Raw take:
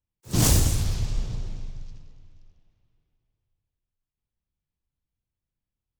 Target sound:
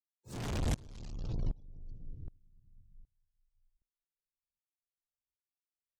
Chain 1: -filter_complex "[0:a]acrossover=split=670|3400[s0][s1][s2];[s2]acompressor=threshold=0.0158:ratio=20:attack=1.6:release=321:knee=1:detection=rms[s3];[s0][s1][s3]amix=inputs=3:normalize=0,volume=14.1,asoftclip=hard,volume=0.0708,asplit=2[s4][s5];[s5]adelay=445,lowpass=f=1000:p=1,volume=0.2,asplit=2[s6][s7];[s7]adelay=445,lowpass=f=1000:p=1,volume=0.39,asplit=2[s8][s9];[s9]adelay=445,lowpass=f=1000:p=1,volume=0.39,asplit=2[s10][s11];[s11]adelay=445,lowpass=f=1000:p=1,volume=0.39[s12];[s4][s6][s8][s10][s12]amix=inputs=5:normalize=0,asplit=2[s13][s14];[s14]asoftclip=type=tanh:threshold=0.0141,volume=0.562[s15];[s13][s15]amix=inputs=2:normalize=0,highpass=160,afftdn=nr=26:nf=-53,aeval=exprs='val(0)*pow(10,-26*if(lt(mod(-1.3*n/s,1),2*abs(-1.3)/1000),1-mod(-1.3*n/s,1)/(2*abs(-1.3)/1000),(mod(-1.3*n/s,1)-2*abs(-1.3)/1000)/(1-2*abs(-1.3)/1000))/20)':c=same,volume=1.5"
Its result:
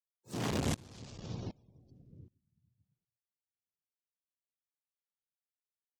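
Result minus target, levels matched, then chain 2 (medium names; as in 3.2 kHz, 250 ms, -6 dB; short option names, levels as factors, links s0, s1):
overload inside the chain: distortion -5 dB; 125 Hz band -3.0 dB
-filter_complex "[0:a]acrossover=split=670|3400[s0][s1][s2];[s2]acompressor=threshold=0.0158:ratio=20:attack=1.6:release=321:knee=1:detection=rms[s3];[s0][s1][s3]amix=inputs=3:normalize=0,volume=44.7,asoftclip=hard,volume=0.0224,asplit=2[s4][s5];[s5]adelay=445,lowpass=f=1000:p=1,volume=0.2,asplit=2[s6][s7];[s7]adelay=445,lowpass=f=1000:p=1,volume=0.39,asplit=2[s8][s9];[s9]adelay=445,lowpass=f=1000:p=1,volume=0.39,asplit=2[s10][s11];[s11]adelay=445,lowpass=f=1000:p=1,volume=0.39[s12];[s4][s6][s8][s10][s12]amix=inputs=5:normalize=0,asplit=2[s13][s14];[s14]asoftclip=type=tanh:threshold=0.0141,volume=0.562[s15];[s13][s15]amix=inputs=2:normalize=0,afftdn=nr=26:nf=-53,aeval=exprs='val(0)*pow(10,-26*if(lt(mod(-1.3*n/s,1),2*abs(-1.3)/1000),1-mod(-1.3*n/s,1)/(2*abs(-1.3)/1000),(mod(-1.3*n/s,1)-2*abs(-1.3)/1000)/(1-2*abs(-1.3)/1000))/20)':c=same,volume=1.5"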